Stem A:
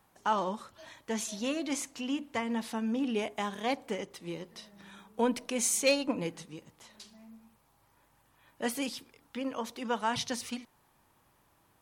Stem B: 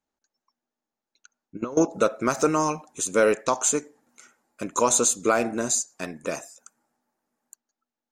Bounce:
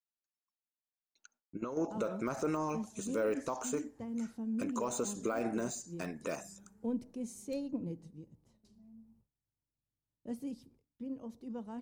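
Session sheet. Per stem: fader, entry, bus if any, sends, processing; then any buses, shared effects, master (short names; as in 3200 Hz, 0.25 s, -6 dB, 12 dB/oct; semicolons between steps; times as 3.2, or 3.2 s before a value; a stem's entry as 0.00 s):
+1.0 dB, 1.65 s, no send, EQ curve 110 Hz 0 dB, 330 Hz -7 dB, 1400 Hz -28 dB, 2700 Hz -29 dB, 5100 Hz -23 dB
-5.0 dB, 0.00 s, no send, de-esser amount 100%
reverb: off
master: notch 3400 Hz, Q 21; gate with hold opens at -58 dBFS; limiter -25 dBFS, peak gain reduction 11 dB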